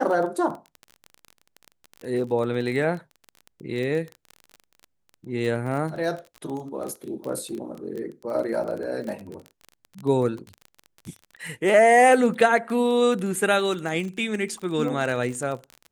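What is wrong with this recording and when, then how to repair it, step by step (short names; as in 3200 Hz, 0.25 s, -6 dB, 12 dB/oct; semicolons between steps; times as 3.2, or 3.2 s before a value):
crackle 27/s -30 dBFS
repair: de-click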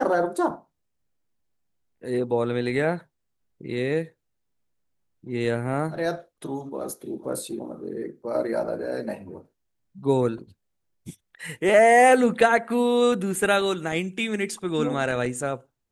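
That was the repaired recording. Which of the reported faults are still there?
none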